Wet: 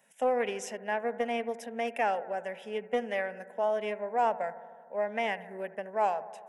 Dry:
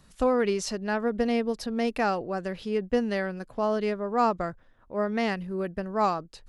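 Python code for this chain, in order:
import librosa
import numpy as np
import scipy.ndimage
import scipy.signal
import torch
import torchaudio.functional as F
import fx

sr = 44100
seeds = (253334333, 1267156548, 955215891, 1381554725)

y = scipy.signal.sosfilt(scipy.signal.butter(4, 260.0, 'highpass', fs=sr, output='sos'), x)
y = fx.fixed_phaser(y, sr, hz=1200.0, stages=6)
y = fx.echo_bbd(y, sr, ms=76, stages=1024, feedback_pct=75, wet_db=-17.0)
y = fx.doppler_dist(y, sr, depth_ms=0.13)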